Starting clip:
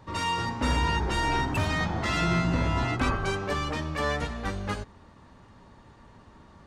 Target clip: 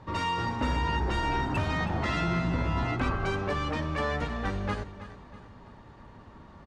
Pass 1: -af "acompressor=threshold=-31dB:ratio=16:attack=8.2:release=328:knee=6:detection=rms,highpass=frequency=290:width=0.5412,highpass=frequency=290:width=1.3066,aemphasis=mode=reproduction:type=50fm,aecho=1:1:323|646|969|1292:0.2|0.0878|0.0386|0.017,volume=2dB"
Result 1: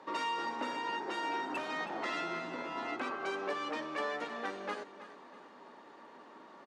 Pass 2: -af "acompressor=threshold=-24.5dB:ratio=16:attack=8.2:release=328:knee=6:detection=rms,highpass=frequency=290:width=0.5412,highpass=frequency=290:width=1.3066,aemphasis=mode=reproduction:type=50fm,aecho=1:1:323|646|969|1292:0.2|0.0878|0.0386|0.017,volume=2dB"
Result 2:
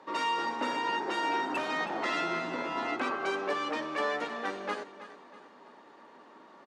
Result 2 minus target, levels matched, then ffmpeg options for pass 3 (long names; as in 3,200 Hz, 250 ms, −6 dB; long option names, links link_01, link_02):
250 Hz band −3.5 dB
-af "acompressor=threshold=-24.5dB:ratio=16:attack=8.2:release=328:knee=6:detection=rms,aemphasis=mode=reproduction:type=50fm,aecho=1:1:323|646|969|1292:0.2|0.0878|0.0386|0.017,volume=2dB"